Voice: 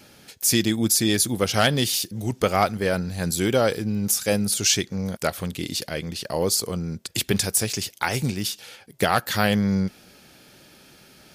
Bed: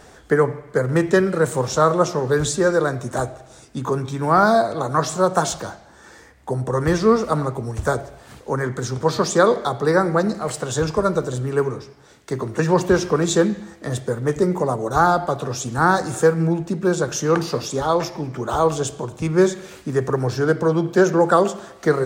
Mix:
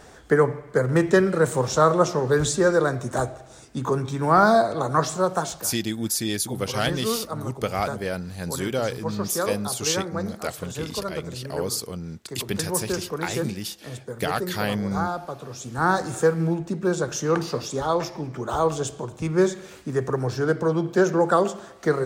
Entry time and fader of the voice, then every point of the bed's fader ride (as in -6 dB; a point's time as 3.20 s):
5.20 s, -5.5 dB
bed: 4.98 s -1.5 dB
5.83 s -11.5 dB
15.49 s -11.5 dB
15.90 s -4 dB